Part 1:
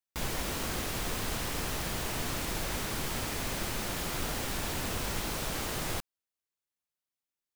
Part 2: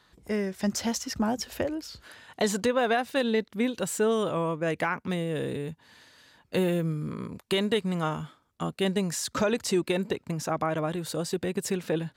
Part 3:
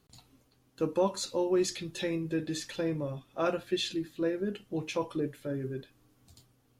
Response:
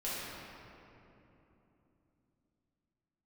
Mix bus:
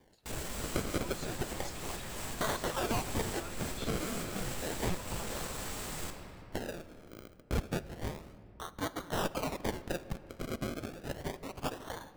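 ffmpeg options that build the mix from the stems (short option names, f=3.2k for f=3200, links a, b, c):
-filter_complex "[0:a]equalizer=f=7.8k:t=o:w=0.25:g=9.5,volume=33dB,asoftclip=hard,volume=-33dB,adelay=100,volume=-7.5dB,asplit=2[a][b];[b]volume=-6dB[c];[1:a]highpass=1.5k,acrusher=samples=33:mix=1:aa=0.000001:lfo=1:lforange=33:lforate=0.31,volume=0dB,asplit=2[d][e];[e]volume=-18.5dB[f];[2:a]highpass=1k,volume=-14dB,asplit=2[g][h];[h]apad=whole_len=337414[i];[a][i]sidechaincompress=threshold=-57dB:ratio=8:attack=6.3:release=153[j];[3:a]atrim=start_sample=2205[k];[c][f]amix=inputs=2:normalize=0[l];[l][k]afir=irnorm=-1:irlink=0[m];[j][d][g][m]amix=inputs=4:normalize=0"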